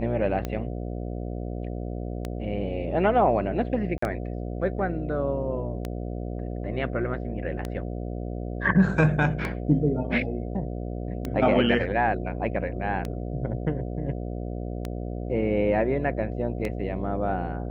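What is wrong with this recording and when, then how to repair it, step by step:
buzz 60 Hz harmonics 12 -32 dBFS
tick 33 1/3 rpm -16 dBFS
3.98–4.02 gap 44 ms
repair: de-click; de-hum 60 Hz, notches 12; interpolate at 3.98, 44 ms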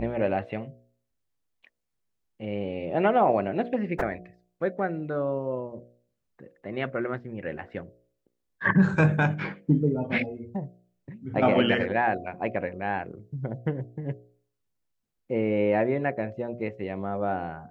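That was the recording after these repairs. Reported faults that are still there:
none

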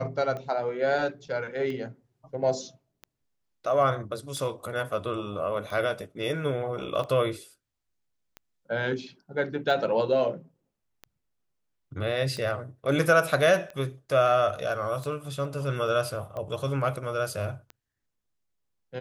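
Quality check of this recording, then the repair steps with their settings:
tick 45 rpm -25 dBFS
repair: de-click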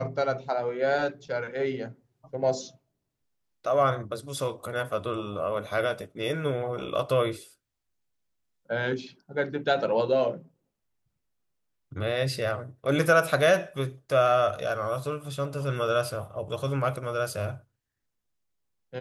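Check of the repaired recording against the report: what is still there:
none

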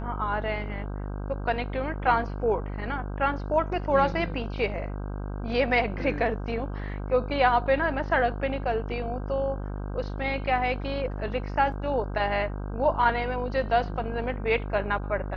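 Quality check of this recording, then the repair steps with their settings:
buzz 50 Hz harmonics 32 -33 dBFS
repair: de-hum 50 Hz, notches 32

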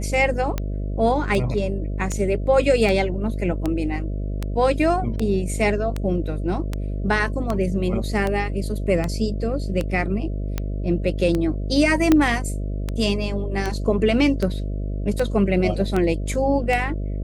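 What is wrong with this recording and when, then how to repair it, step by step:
buzz 50 Hz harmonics 13 -26 dBFS
tick 78 rpm -11 dBFS
12.12 pop -4 dBFS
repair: de-click; de-hum 50 Hz, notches 13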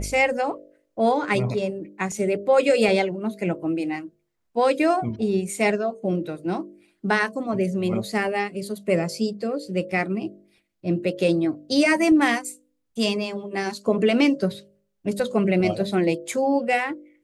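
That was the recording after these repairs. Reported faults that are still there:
none

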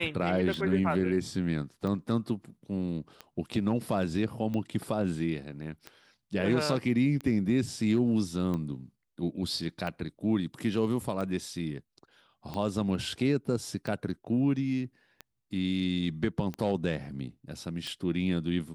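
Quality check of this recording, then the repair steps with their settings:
tick 45 rpm -23 dBFS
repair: de-click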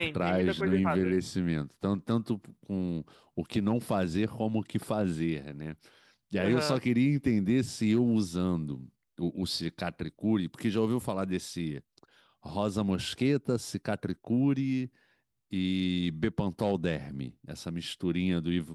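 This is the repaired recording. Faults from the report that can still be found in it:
none

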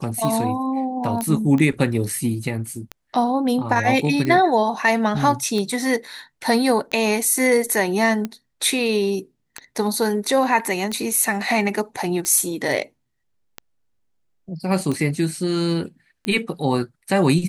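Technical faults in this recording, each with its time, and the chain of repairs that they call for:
tick 45 rpm -13 dBFS
1.21 pop -12 dBFS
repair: de-click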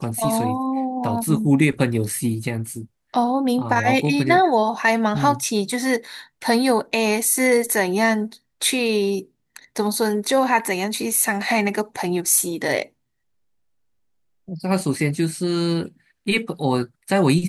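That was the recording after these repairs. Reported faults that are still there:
none

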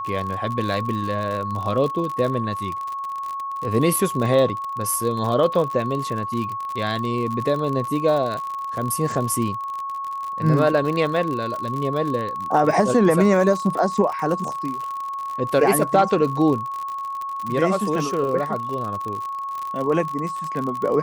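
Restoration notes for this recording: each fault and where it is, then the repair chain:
crackle 57/s -26 dBFS
tone 1100 Hz -26 dBFS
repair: de-click; notch 1100 Hz, Q 30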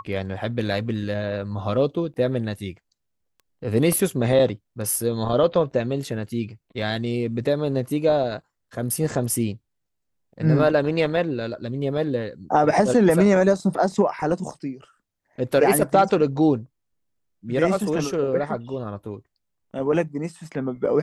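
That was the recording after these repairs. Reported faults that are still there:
none

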